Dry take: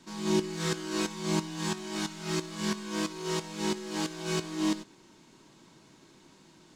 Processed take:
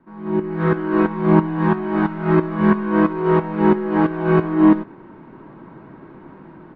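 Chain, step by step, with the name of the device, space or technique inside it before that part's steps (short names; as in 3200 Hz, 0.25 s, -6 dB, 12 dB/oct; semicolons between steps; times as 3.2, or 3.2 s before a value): action camera in a waterproof case (LPF 1600 Hz 24 dB/oct; AGC gain up to 16 dB; gain +1.5 dB; AAC 48 kbps 44100 Hz)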